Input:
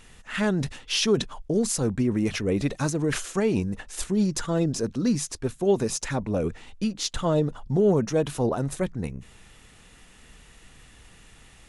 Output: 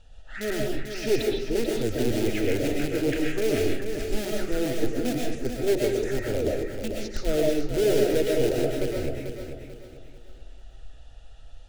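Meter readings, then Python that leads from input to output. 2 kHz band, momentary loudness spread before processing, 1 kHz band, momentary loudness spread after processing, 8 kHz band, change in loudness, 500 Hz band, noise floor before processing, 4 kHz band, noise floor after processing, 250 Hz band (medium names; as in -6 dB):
+0.5 dB, 8 LU, -4.5 dB, 9 LU, -6.5 dB, -1.0 dB, +2.0 dB, -53 dBFS, -3.0 dB, -45 dBFS, -2.5 dB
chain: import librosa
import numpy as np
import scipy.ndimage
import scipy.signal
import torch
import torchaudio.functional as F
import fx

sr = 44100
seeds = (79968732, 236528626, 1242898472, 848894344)

p1 = scipy.signal.sosfilt(scipy.signal.butter(2, 2800.0, 'lowpass', fs=sr, output='sos'), x)
p2 = fx.env_phaser(p1, sr, low_hz=350.0, high_hz=1300.0, full_db=-19.0)
p3 = (np.mod(10.0 ** (19.5 / 20.0) * p2 + 1.0, 2.0) - 1.0) / 10.0 ** (19.5 / 20.0)
p4 = p2 + (p3 * 10.0 ** (-8.0 / 20.0))
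p5 = fx.fixed_phaser(p4, sr, hz=440.0, stages=4)
p6 = p5 + fx.echo_feedback(p5, sr, ms=441, feedback_pct=35, wet_db=-7.5, dry=0)
y = fx.rev_freeverb(p6, sr, rt60_s=0.5, hf_ratio=0.65, predelay_ms=85, drr_db=-1.5)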